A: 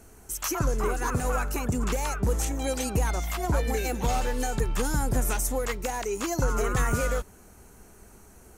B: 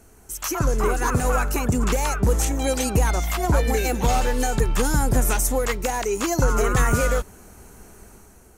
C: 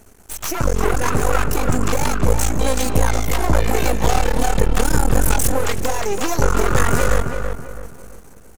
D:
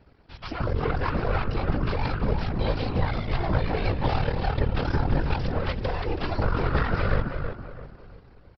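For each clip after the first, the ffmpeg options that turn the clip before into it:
-af "dynaudnorm=f=160:g=7:m=2"
-filter_complex "[0:a]aeval=exprs='max(val(0),0)':c=same,asplit=2[s0][s1];[s1]adelay=329,lowpass=f=2300:p=1,volume=0.501,asplit=2[s2][s3];[s3]adelay=329,lowpass=f=2300:p=1,volume=0.36,asplit=2[s4][s5];[s5]adelay=329,lowpass=f=2300:p=1,volume=0.36,asplit=2[s6][s7];[s7]adelay=329,lowpass=f=2300:p=1,volume=0.36[s8];[s2][s4][s6][s8]amix=inputs=4:normalize=0[s9];[s0][s9]amix=inputs=2:normalize=0,volume=2"
-af "afftfilt=real='hypot(re,im)*cos(2*PI*random(0))':imag='hypot(re,im)*sin(2*PI*random(1))':win_size=512:overlap=0.75,aresample=11025,aresample=44100,volume=0.794"

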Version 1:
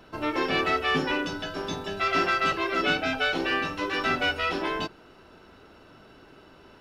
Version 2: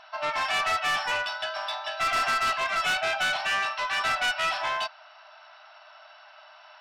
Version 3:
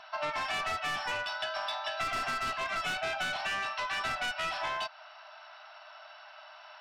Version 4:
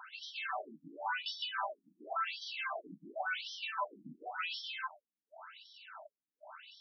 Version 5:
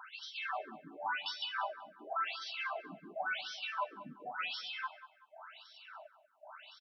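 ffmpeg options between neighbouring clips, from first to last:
-af "afftfilt=real='re*between(b*sr/4096,590,6000)':imag='im*between(b*sr/4096,590,6000)':win_size=4096:overlap=0.75,asoftclip=type=tanh:threshold=0.0473,volume=1.78"
-filter_complex "[0:a]acrossover=split=410[s0][s1];[s1]acompressor=threshold=0.0251:ratio=4[s2];[s0][s2]amix=inputs=2:normalize=0"
-filter_complex "[0:a]bandreject=f=1900:w=7.1,acrossover=split=1300[s0][s1];[s1]asoftclip=type=tanh:threshold=0.0168[s2];[s0][s2]amix=inputs=2:normalize=0,afftfilt=real='re*between(b*sr/1024,220*pow(4400/220,0.5+0.5*sin(2*PI*0.92*pts/sr))/1.41,220*pow(4400/220,0.5+0.5*sin(2*PI*0.92*pts/sr))*1.41)':imag='im*between(b*sr/1024,220*pow(4400/220,0.5+0.5*sin(2*PI*0.92*pts/sr))/1.41,220*pow(4400/220,0.5+0.5*sin(2*PI*0.92*pts/sr))*1.41)':win_size=1024:overlap=0.75,volume=1.5"
-filter_complex "[0:a]asplit=2[s0][s1];[s1]adelay=190,lowpass=f=2500:p=1,volume=0.211,asplit=2[s2][s3];[s3]adelay=190,lowpass=f=2500:p=1,volume=0.38,asplit=2[s4][s5];[s5]adelay=190,lowpass=f=2500:p=1,volume=0.38,asplit=2[s6][s7];[s7]adelay=190,lowpass=f=2500:p=1,volume=0.38[s8];[s0][s2][s4][s6][s8]amix=inputs=5:normalize=0"

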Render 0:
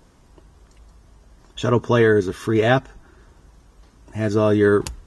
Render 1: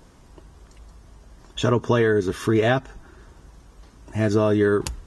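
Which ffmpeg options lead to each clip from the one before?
-af "acompressor=threshold=0.126:ratio=6,volume=1.33"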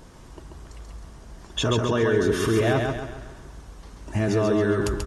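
-filter_complex "[0:a]alimiter=limit=0.119:level=0:latency=1:release=17,asplit=2[s0][s1];[s1]aecho=0:1:136|272|408|544|680|816:0.631|0.278|0.122|0.0537|0.0236|0.0104[s2];[s0][s2]amix=inputs=2:normalize=0,volume=1.5"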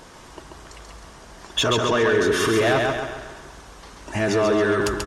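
-filter_complex "[0:a]aecho=1:1:214:0.119,asplit=2[s0][s1];[s1]highpass=f=720:p=1,volume=5.01,asoftclip=type=tanh:threshold=0.335[s2];[s0][s2]amix=inputs=2:normalize=0,lowpass=f=7100:p=1,volume=0.501"

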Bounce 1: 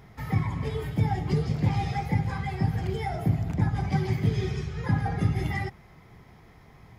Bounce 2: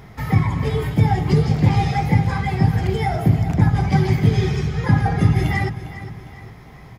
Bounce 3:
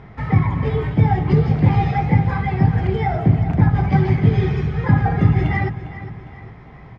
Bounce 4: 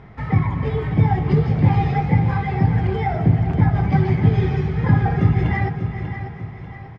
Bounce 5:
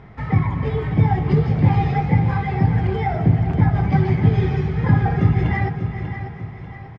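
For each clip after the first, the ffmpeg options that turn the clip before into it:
-af "aecho=1:1:404|808|1212|1616:0.2|0.0898|0.0404|0.0182,volume=2.82"
-af "lowpass=2500,volume=1.12"
-af "aecho=1:1:592|1184|1776|2368:0.316|0.133|0.0558|0.0234,volume=0.794"
-af "aresample=22050,aresample=44100"

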